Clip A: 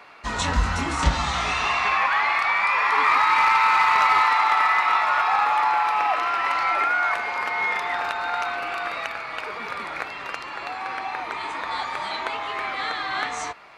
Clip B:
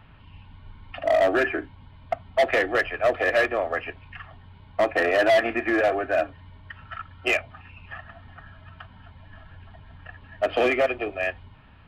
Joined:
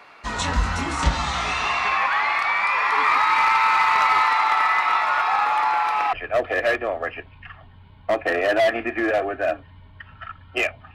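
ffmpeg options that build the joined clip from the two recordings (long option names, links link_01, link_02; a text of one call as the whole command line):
ffmpeg -i cue0.wav -i cue1.wav -filter_complex "[0:a]apad=whole_dur=10.94,atrim=end=10.94,atrim=end=6.132[link_01];[1:a]atrim=start=2.828:end=7.64[link_02];[link_01][link_02]acrossfade=duration=0.004:curve1=hsin:curve2=hsin" out.wav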